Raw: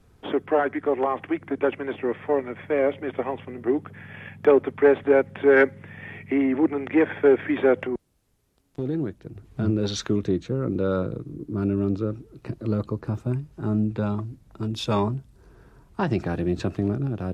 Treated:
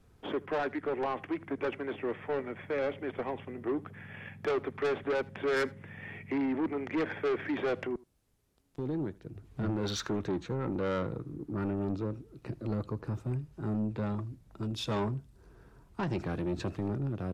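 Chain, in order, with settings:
0:09.63–0:11.71: parametric band 1,200 Hz +7 dB 1.4 octaves
soft clipping −21.5 dBFS, distortion −8 dB
single-tap delay 79 ms −23.5 dB
level −5 dB

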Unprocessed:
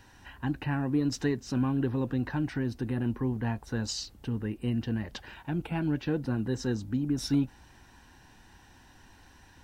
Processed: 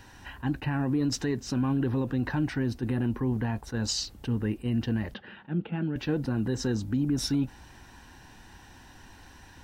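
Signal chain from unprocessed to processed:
brickwall limiter −24 dBFS, peak gain reduction 8 dB
0:05.14–0:05.96: loudspeaker in its box 190–3,000 Hz, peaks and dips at 200 Hz +9 dB, 300 Hz −6 dB, 690 Hz −8 dB, 980 Hz −10 dB, 1,500 Hz −3 dB, 2,300 Hz −10 dB
level that may rise only so fast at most 440 dB per second
level +5 dB

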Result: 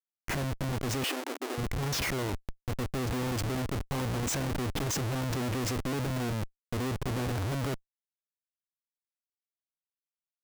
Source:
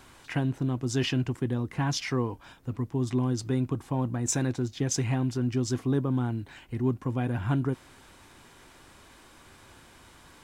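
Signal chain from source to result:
comparator with hysteresis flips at −38.5 dBFS
0:01.04–0:01.58: linear-phase brick-wall high-pass 250 Hz
level −1 dB

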